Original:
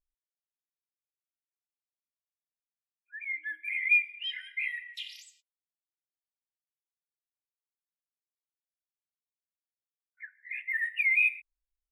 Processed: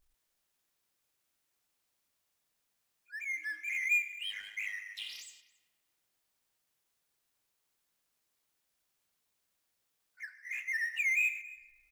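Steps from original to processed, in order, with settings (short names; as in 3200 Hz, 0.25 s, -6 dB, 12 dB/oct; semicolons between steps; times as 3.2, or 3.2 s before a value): 4.23–5.02 ring modulator 51 Hz; outdoor echo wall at 47 m, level -28 dB; power-law curve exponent 0.7; on a send: band-limited delay 0.107 s, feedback 59%, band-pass 1300 Hz, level -18.5 dB; on the sum: gain -7 dB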